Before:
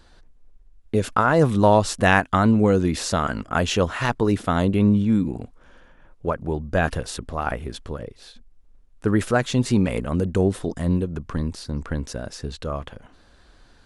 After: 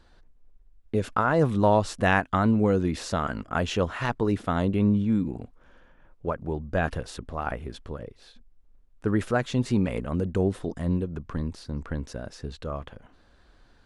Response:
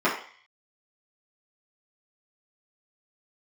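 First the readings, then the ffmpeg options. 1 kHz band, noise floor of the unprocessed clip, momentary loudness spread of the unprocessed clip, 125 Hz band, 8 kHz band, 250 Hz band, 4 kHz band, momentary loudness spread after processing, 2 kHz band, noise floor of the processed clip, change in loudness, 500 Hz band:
-5.0 dB, -54 dBFS, 15 LU, -4.5 dB, -10.0 dB, -4.5 dB, -7.5 dB, 15 LU, -5.5 dB, -58 dBFS, -4.5 dB, -4.5 dB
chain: -af "highshelf=f=5k:g=-8,volume=-4.5dB"

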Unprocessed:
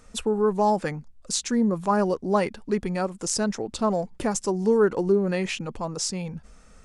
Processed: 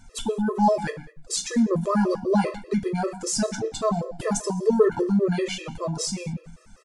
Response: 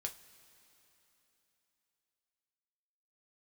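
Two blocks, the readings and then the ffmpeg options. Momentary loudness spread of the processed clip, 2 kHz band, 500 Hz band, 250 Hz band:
10 LU, -1.0 dB, -0.5 dB, +1.5 dB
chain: -filter_complex "[0:a]asplit=2[a][b];[b]adelay=120,highpass=300,lowpass=3.4k,asoftclip=type=hard:threshold=-16.5dB,volume=-15dB[c];[a][c]amix=inputs=2:normalize=0,aphaser=in_gain=1:out_gain=1:delay=1.2:decay=0.23:speed=1.7:type=sinusoidal[d];[1:a]atrim=start_sample=2205,afade=t=out:st=0.28:d=0.01,atrim=end_sample=12789[e];[d][e]afir=irnorm=-1:irlink=0,afftfilt=real='re*gt(sin(2*PI*5.1*pts/sr)*(1-2*mod(floor(b*sr/1024/340),2)),0)':imag='im*gt(sin(2*PI*5.1*pts/sr)*(1-2*mod(floor(b*sr/1024/340),2)),0)':win_size=1024:overlap=0.75,volume=5dB"

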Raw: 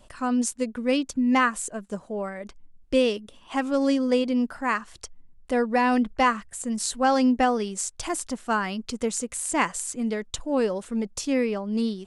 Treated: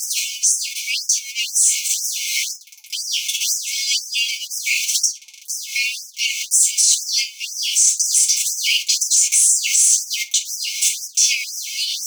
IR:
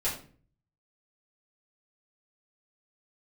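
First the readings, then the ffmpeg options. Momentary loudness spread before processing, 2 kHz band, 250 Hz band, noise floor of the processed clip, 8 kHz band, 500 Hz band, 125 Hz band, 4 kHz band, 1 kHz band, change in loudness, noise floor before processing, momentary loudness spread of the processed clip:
11 LU, +6.0 dB, under -40 dB, -41 dBFS, +20.0 dB, under -40 dB, n/a, +18.0 dB, under -40 dB, +9.0 dB, -54 dBFS, 10 LU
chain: -filter_complex "[0:a]aeval=exprs='val(0)+0.5*0.0237*sgn(val(0))':c=same,lowshelf=f=330:g=-3.5[a];[1:a]atrim=start_sample=2205,asetrate=74970,aresample=44100[b];[a][b]afir=irnorm=-1:irlink=0,dynaudnorm=f=310:g=17:m=12dB,equalizer=f=6.1k:t=o:w=0.36:g=11.5,acompressor=threshold=-20dB:ratio=6,afftfilt=real='re*(1-between(b*sr/4096,260,2100))':imag='im*(1-between(b*sr/4096,260,2100))':win_size=4096:overlap=0.75,alimiter=level_in=23dB:limit=-1dB:release=50:level=0:latency=1,afftfilt=real='re*gte(b*sr/1024,830*pow(5100/830,0.5+0.5*sin(2*PI*2*pts/sr)))':imag='im*gte(b*sr/1024,830*pow(5100/830,0.5+0.5*sin(2*PI*2*pts/sr)))':win_size=1024:overlap=0.75,volume=-3dB"

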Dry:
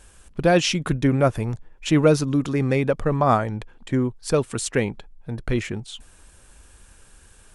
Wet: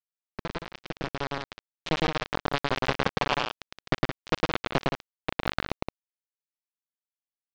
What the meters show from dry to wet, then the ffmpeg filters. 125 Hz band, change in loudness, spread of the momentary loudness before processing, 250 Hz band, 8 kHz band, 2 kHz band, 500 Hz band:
-12.0 dB, -8.5 dB, 16 LU, -12.0 dB, -16.5 dB, -1.5 dB, -11.0 dB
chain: -filter_complex "[0:a]highshelf=f=3.4k:g=-4.5,asplit=2[a][b];[b]aecho=0:1:297:0.168[c];[a][c]amix=inputs=2:normalize=0,flanger=delay=6.5:depth=8.1:regen=71:speed=1.2:shape=sinusoidal,acompressor=threshold=-36dB:ratio=6,acrusher=bits=4:mix=0:aa=0.000001,dynaudnorm=f=230:g=13:m=10.5dB,lowpass=f=4.7k:w=0.5412,lowpass=f=4.7k:w=1.3066,asplit=2[d][e];[e]aecho=0:1:107.9|169.1:0.891|0.447[f];[d][f]amix=inputs=2:normalize=0,volume=1.5dB"

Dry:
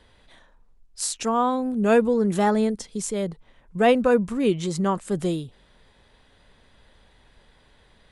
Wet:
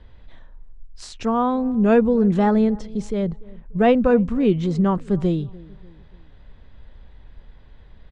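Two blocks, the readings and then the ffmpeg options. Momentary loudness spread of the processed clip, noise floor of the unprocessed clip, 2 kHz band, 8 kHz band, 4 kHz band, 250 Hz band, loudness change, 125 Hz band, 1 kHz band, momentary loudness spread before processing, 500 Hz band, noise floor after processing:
11 LU, -59 dBFS, -1.0 dB, under -10 dB, -4.5 dB, +5.0 dB, +3.0 dB, +6.5 dB, +0.5 dB, 11 LU, +1.5 dB, -47 dBFS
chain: -filter_complex "[0:a]lowpass=5.8k,aemphasis=mode=reproduction:type=bsi,asplit=2[a][b];[b]adelay=293,lowpass=f=880:p=1,volume=-21dB,asplit=2[c][d];[d]adelay=293,lowpass=f=880:p=1,volume=0.46,asplit=2[e][f];[f]adelay=293,lowpass=f=880:p=1,volume=0.46[g];[a][c][e][g]amix=inputs=4:normalize=0"

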